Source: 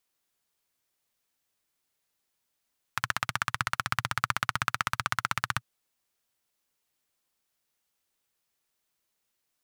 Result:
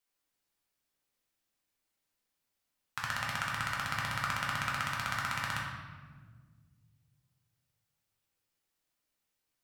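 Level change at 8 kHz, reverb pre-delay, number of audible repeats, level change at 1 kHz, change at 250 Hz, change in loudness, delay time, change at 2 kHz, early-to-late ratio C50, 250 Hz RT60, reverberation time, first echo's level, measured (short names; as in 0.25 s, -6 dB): -5.0 dB, 4 ms, none, -4.5 dB, -0.5 dB, -3.5 dB, none, -3.0 dB, 1.5 dB, 2.7 s, 1.6 s, none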